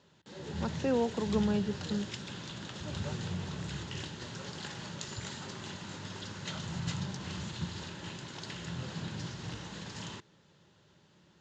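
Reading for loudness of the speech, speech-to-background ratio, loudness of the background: -33.5 LUFS, 6.5 dB, -40.0 LUFS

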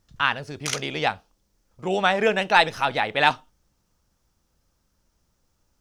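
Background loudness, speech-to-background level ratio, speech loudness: -31.0 LUFS, 8.5 dB, -22.5 LUFS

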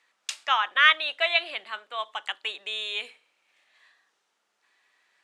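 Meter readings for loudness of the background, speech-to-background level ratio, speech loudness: -38.0 LUFS, 13.0 dB, -25.0 LUFS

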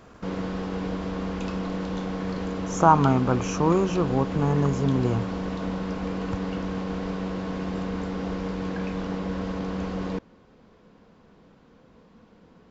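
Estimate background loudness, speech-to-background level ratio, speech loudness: -30.5 LUFS, 7.5 dB, -23.0 LUFS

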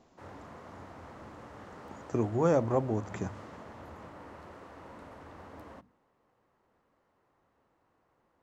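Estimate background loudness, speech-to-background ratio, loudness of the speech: -49.0 LUFS, 18.5 dB, -30.5 LUFS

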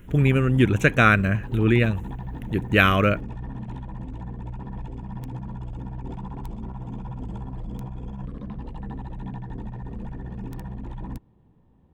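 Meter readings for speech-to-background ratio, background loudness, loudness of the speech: 16.0 dB, -36.0 LUFS, -20.0 LUFS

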